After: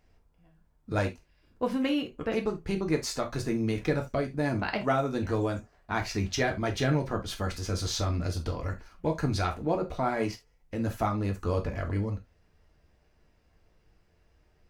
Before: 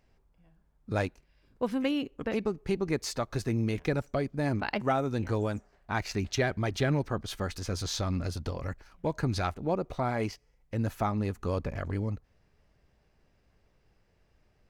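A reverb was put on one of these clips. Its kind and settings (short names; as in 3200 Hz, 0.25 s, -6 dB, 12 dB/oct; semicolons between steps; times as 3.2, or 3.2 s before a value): non-linear reverb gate 0.1 s falling, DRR 3 dB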